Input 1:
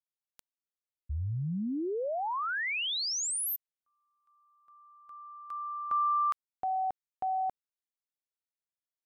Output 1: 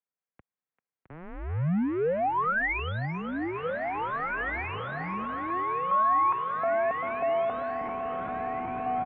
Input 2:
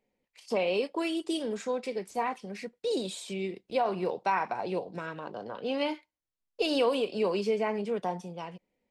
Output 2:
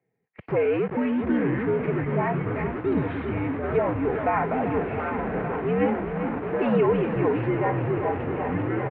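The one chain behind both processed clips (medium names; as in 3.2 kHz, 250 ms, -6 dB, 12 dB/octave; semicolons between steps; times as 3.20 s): comb 3.6 ms, depth 43%; thinning echo 392 ms, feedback 83%, high-pass 230 Hz, level -12 dB; in parallel at -3.5 dB: Schmitt trigger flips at -44 dBFS; on the sum: ever faster or slower copies 499 ms, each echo -6 st, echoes 2, each echo -6 dB; mistuned SSB -84 Hz 160–2300 Hz; trim +2 dB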